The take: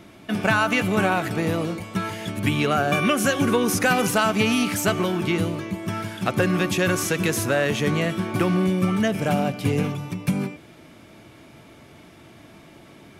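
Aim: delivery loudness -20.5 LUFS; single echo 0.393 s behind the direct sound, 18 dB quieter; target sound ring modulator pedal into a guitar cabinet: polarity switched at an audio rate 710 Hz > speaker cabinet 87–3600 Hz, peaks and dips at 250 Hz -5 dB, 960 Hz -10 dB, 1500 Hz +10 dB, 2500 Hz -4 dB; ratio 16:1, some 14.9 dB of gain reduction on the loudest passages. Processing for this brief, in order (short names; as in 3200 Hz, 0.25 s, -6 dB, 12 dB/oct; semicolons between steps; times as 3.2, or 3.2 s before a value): compressor 16:1, threshold -31 dBFS; echo 0.393 s -18 dB; polarity switched at an audio rate 710 Hz; speaker cabinet 87–3600 Hz, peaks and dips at 250 Hz -5 dB, 960 Hz -10 dB, 1500 Hz +10 dB, 2500 Hz -4 dB; gain +15 dB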